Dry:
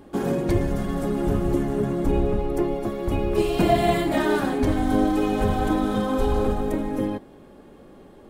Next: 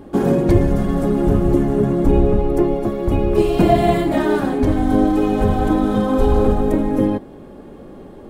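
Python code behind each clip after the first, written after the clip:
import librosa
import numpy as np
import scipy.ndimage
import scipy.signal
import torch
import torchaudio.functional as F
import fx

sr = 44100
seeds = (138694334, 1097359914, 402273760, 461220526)

y = fx.tilt_shelf(x, sr, db=3.5, hz=1100.0)
y = fx.rider(y, sr, range_db=10, speed_s=2.0)
y = y * librosa.db_to_amplitude(3.5)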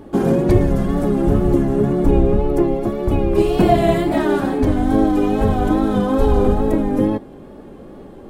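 y = fx.wow_flutter(x, sr, seeds[0], rate_hz=2.1, depth_cents=56.0)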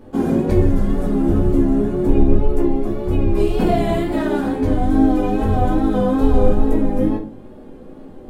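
y = fx.room_shoebox(x, sr, seeds[1], volume_m3=150.0, walls='furnished', distance_m=2.0)
y = y * librosa.db_to_amplitude(-7.5)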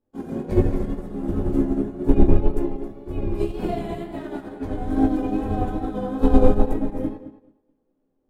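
y = fx.echo_tape(x, sr, ms=216, feedback_pct=50, wet_db=-4, lp_hz=2700.0, drive_db=2.0, wow_cents=9)
y = fx.upward_expand(y, sr, threshold_db=-32.0, expansion=2.5)
y = y * librosa.db_to_amplitude(1.0)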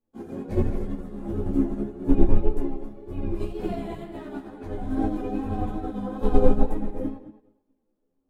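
y = fx.ensemble(x, sr)
y = y * librosa.db_to_amplitude(-1.5)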